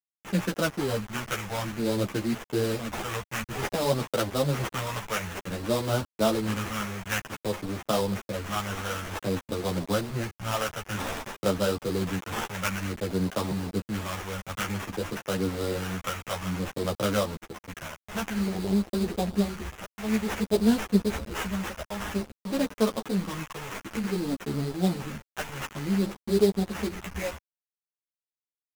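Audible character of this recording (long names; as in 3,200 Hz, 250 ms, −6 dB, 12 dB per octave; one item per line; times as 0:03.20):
a quantiser's noise floor 6 bits, dither none
phaser sweep stages 2, 0.54 Hz, lowest notch 280–4,300 Hz
aliases and images of a low sample rate 4,400 Hz, jitter 20%
a shimmering, thickened sound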